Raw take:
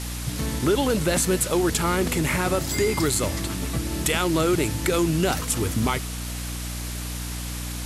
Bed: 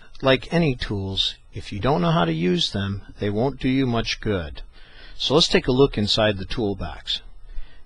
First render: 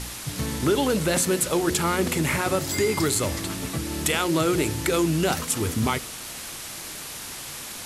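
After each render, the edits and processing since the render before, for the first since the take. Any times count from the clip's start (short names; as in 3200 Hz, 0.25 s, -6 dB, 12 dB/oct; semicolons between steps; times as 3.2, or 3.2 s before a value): de-hum 60 Hz, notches 11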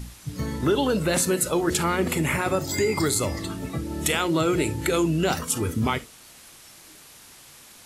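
noise print and reduce 12 dB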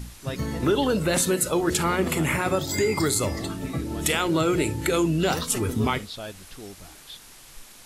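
add bed -17.5 dB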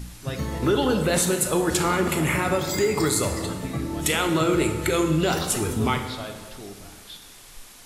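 plate-style reverb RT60 1.6 s, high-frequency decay 0.75×, DRR 5 dB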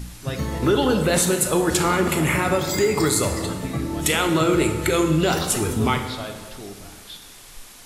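gain +2.5 dB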